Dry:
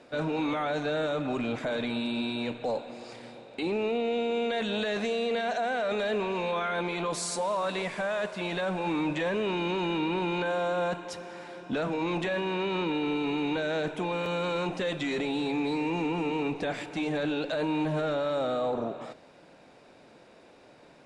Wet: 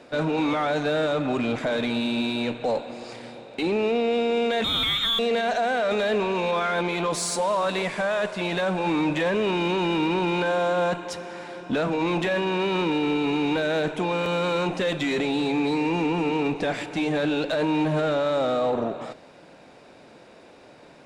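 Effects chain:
0:04.64–0:05.19: voice inversion scrambler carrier 3,900 Hz
harmonic generator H 8 −31 dB, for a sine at −20 dBFS
level +5.5 dB

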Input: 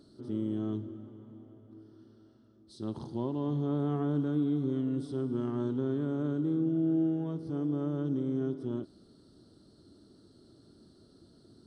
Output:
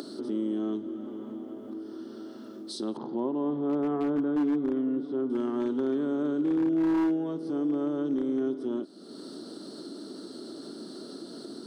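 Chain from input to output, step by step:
high-pass filter 230 Hz 24 dB per octave
upward compression, threshold −33 dBFS
0:02.97–0:05.30: low-pass filter 2,000 Hz 12 dB per octave
wave folding −26 dBFS
level +5 dB

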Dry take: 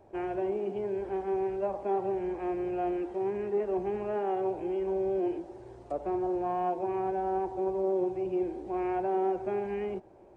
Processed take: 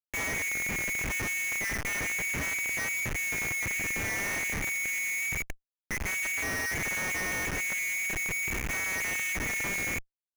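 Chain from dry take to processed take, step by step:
voice inversion scrambler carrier 2,600 Hz
spectral peaks only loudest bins 32
comparator with hysteresis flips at −36.5 dBFS

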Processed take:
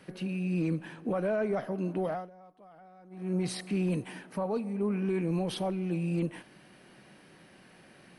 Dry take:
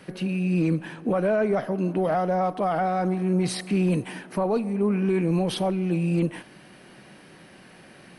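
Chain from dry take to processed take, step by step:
0:02.05–0:03.35: duck −23 dB, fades 0.25 s
0:04.30–0:04.80: notch comb filter 350 Hz
level −7 dB

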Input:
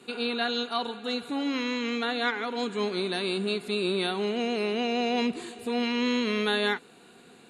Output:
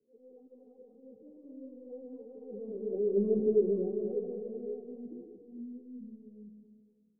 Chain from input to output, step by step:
source passing by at 0:03.44, 8 m/s, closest 1.5 metres
Chebyshev low-pass filter 510 Hz, order 3
transient designer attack −10 dB, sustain +8 dB
low-pass filter sweep 430 Hz → 160 Hz, 0:04.40–0:07.03
echo with a time of its own for lows and highs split 350 Hz, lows 157 ms, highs 232 ms, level −3.5 dB
wrong playback speed 24 fps film run at 25 fps
string-ensemble chorus
level +1.5 dB

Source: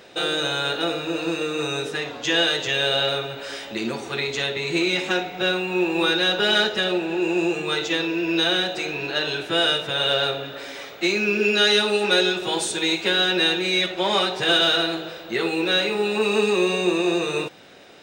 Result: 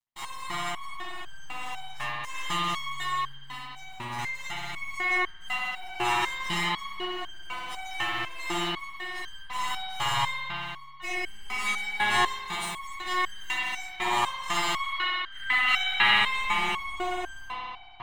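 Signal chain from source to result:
lower of the sound and its delayed copy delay 1 ms
octave-band graphic EQ 250/500/1,000/2,000/4,000/8,000 Hz −5/−6/+9/+5/−5/+9 dB
in parallel at −3.5 dB: bit reduction 6 bits
on the sum: dead-zone distortion −28.5 dBFS
gain on a spectral selection 0:14.83–0:16.11, 1,200–4,300 Hz +12 dB
spring reverb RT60 3 s, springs 58 ms, chirp 35 ms, DRR −8 dB
step-sequenced resonator 4 Hz 120–1,600 Hz
level −6 dB

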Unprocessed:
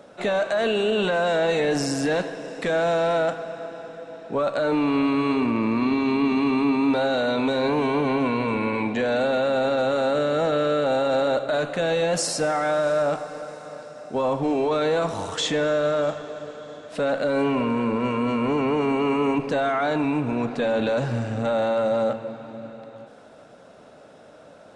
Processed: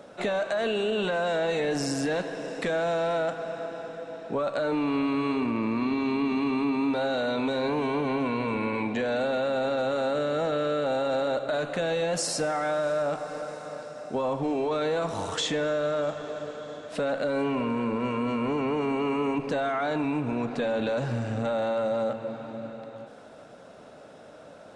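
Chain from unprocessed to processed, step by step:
downward compressor 2 to 1, threshold −28 dBFS, peak gain reduction 6 dB

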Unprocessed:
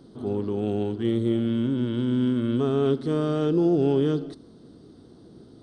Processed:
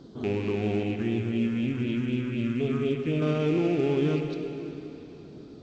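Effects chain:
loose part that buzzes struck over −32 dBFS, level −28 dBFS
reverb reduction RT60 0.5 s
downward compressor 2 to 1, threshold −27 dBFS, peak gain reduction 5 dB
0:00.83–0:03.22: all-pass phaser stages 4, 4 Hz, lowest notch 590–1,300 Hz
dense smooth reverb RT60 3.6 s, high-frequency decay 0.85×, DRR 4 dB
level +1.5 dB
A-law companding 128 kbit/s 16,000 Hz

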